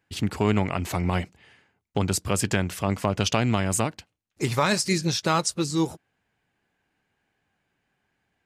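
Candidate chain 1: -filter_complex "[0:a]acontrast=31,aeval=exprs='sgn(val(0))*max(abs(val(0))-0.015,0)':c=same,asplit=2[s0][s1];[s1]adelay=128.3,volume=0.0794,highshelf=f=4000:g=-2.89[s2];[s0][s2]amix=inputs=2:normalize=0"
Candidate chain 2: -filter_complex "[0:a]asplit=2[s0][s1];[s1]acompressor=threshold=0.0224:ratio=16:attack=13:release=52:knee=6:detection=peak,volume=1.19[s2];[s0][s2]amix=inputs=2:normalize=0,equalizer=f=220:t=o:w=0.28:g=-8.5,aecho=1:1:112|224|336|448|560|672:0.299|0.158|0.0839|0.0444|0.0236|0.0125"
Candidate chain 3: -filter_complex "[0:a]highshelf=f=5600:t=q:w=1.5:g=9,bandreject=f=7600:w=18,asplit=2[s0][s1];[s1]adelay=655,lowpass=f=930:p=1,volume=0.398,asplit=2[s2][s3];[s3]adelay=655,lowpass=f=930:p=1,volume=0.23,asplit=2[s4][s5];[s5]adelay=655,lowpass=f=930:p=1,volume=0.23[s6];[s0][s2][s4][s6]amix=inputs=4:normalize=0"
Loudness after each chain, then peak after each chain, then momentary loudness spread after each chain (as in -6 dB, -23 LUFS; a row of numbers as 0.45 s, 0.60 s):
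-21.0 LUFS, -22.5 LUFS, -23.0 LUFS; -5.0 dBFS, -6.5 dBFS, -2.5 dBFS; 7 LU, 11 LU, 15 LU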